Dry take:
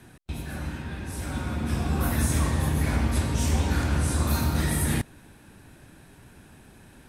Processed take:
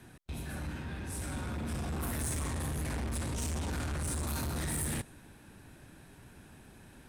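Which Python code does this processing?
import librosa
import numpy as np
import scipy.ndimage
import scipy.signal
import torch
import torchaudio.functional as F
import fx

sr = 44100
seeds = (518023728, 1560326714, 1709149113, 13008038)

y = 10.0 ** (-29.0 / 20.0) * np.tanh(x / 10.0 ** (-29.0 / 20.0))
y = fx.dynamic_eq(y, sr, hz=8900.0, q=1.5, threshold_db=-55.0, ratio=4.0, max_db=6)
y = y * librosa.db_to_amplitude(-3.5)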